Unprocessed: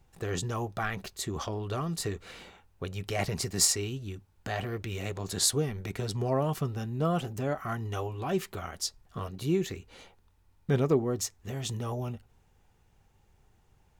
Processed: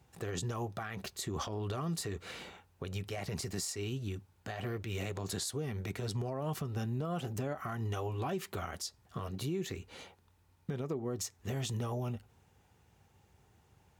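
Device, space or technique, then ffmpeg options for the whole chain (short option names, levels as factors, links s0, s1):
podcast mastering chain: -af "highpass=f=64:w=0.5412,highpass=f=64:w=1.3066,acompressor=threshold=0.0251:ratio=4,alimiter=level_in=1.78:limit=0.0631:level=0:latency=1:release=100,volume=0.562,volume=1.26" -ar 48000 -c:a libmp3lame -b:a 128k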